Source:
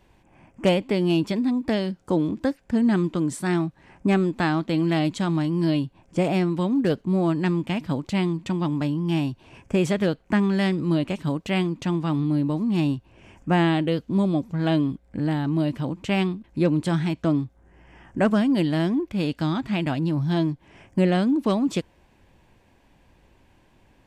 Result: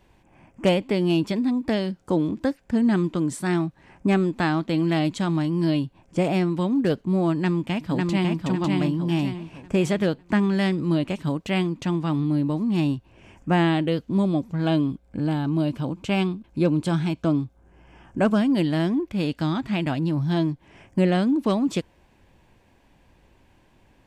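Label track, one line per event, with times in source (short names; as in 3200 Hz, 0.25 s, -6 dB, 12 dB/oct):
7.350000	8.450000	echo throw 0.55 s, feedback 40%, level -2.5 dB
14.610000	18.400000	notch 1900 Hz, Q 6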